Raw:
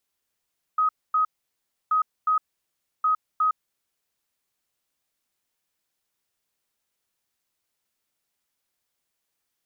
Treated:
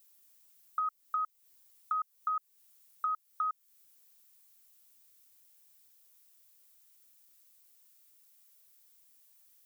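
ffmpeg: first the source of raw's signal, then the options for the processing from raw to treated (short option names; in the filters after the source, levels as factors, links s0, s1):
-f lavfi -i "aevalsrc='0.126*sin(2*PI*1260*t)*clip(min(mod(mod(t,1.13),0.36),0.11-mod(mod(t,1.13),0.36))/0.005,0,1)*lt(mod(t,1.13),0.72)':d=3.39:s=44100"
-af "aemphasis=mode=production:type=75kf,acompressor=threshold=0.0178:ratio=3"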